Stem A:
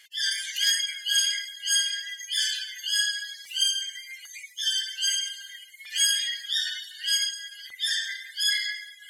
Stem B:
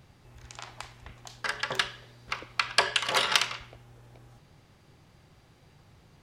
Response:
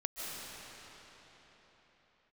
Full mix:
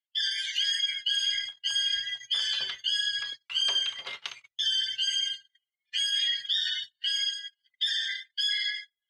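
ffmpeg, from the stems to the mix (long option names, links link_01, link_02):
-filter_complex "[0:a]alimiter=limit=-21.5dB:level=0:latency=1:release=74,volume=-2dB[link_01];[1:a]adelay=900,volume=-16.5dB[link_02];[link_01][link_02]amix=inputs=2:normalize=0,agate=range=-44dB:threshold=-39dB:ratio=16:detection=peak,lowpass=5400,equalizer=frequency=3300:width_type=o:width=0.93:gain=7"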